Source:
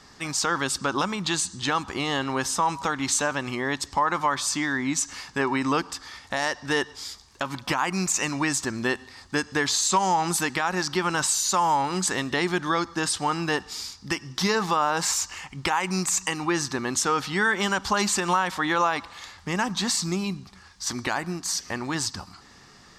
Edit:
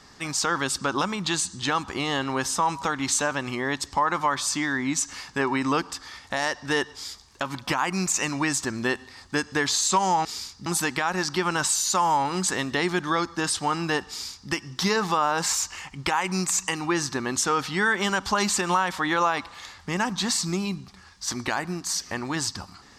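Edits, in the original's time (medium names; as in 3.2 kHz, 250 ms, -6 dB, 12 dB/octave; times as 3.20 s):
13.68–14.09 s: copy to 10.25 s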